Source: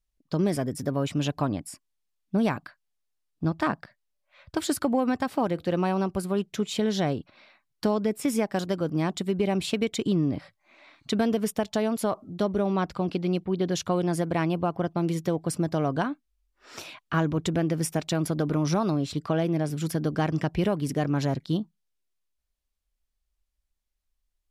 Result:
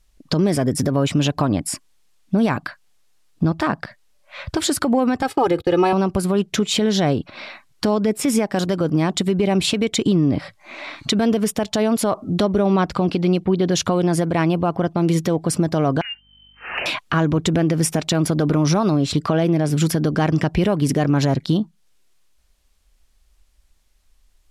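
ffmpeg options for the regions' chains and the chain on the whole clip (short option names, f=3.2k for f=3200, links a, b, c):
-filter_complex "[0:a]asettb=1/sr,asplit=3[a][b][c];[a]atrim=end=5.224[d];[b]atrim=start=5.22:end=5.93,asetpts=PTS-STARTPTS,afade=t=in:d=0.004:c=qsin,afade=t=out:st=0.706:d=0.004:c=qsin,agate=range=-24dB:threshold=-41dB:ratio=16:release=100:detection=peak,aecho=1:1:2.4:0.93,atrim=end_sample=31311[e];[c]atrim=start=5.926[f];[d][e]acrossfade=d=0.004:c1=hsin:c2=qsin[g];[g][f]acrossfade=d=0.004:c1=qsin:c2=hsin,asettb=1/sr,asplit=3[h][i][j];[h]atrim=end=16.014[k];[i]atrim=start=16.01:end=16.86,asetpts=PTS-STARTPTS,afade=t=in:d=0.004:c=qsin,afade=t=out:st=0.846:d=0.004:c=qsin,lowpass=f=2.6k:t=q:w=0.5098,lowpass=f=2.6k:t=q:w=0.6013,lowpass=f=2.6k:t=q:w=0.9,lowpass=f=2.6k:t=q:w=2.563,afreqshift=-3100,acompressor=threshold=-39dB:ratio=6:attack=3.2:release=140:knee=1:detection=peak,aeval=exprs='val(0)+0.000126*(sin(2*PI*50*n/s)+sin(2*PI*2*50*n/s)/2+sin(2*PI*3*50*n/s)/3+sin(2*PI*4*50*n/s)/4+sin(2*PI*5*50*n/s)/5)':c=same[l];[j]atrim=start=16.856[m];[k][l]acrossfade=d=0.004:c1=hsin:c2=qsin[n];[n][m]acrossfade=d=0.004:c1=qsin:c2=hsin,lowpass=12k,acompressor=threshold=-39dB:ratio=2.5,alimiter=level_in=28.5dB:limit=-1dB:release=50:level=0:latency=1,volume=-8dB"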